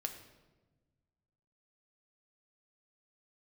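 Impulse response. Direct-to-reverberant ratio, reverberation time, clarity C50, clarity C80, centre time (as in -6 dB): 4.5 dB, 1.2 s, 9.0 dB, 11.0 dB, 17 ms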